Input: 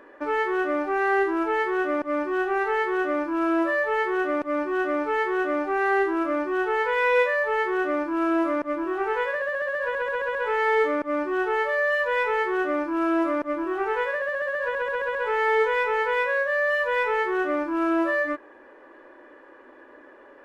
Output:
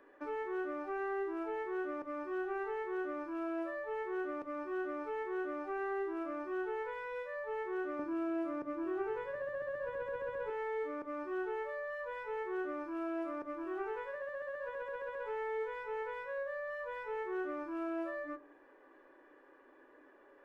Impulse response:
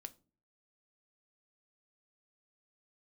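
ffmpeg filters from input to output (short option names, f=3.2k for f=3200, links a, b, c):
-filter_complex "[0:a]asettb=1/sr,asplit=3[a][b][c];[a]atrim=end=7.994[d];[b]atrim=start=7.99:end=10.5,asetpts=PTS-STARTPTS,afade=t=in:d=0.004:c=qsin,afade=t=out:st=2.506:d=0.004:c=qsin,equalizer=f=110:w=0.31:g=14[e];[c]atrim=start=10.496[f];[d][e]acrossfade=d=0.004:c1=hsin:c2=qsin[g];[g][f]acrossfade=d=0.004:c1=qsin:c2=hsin,acrossover=split=330|1200[h][i][j];[h]acompressor=threshold=-34dB:ratio=4[k];[i]acompressor=threshold=-27dB:ratio=4[l];[j]acompressor=threshold=-39dB:ratio=4[m];[k][l][m]amix=inputs=3:normalize=0[n];[1:a]atrim=start_sample=2205[o];[n][o]afir=irnorm=-1:irlink=0,volume=-7dB"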